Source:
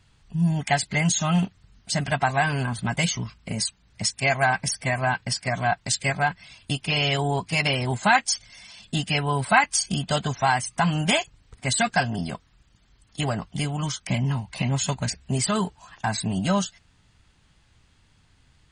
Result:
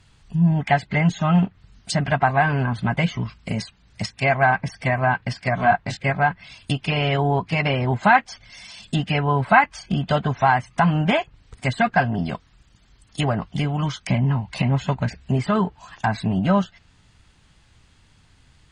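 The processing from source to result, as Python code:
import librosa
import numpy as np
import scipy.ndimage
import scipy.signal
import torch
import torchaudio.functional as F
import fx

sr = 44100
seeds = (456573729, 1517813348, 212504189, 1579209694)

y = fx.doubler(x, sr, ms=21.0, db=-2.0, at=(5.57, 5.97))
y = fx.env_lowpass_down(y, sr, base_hz=1900.0, full_db=-22.0)
y = y * 10.0 ** (4.5 / 20.0)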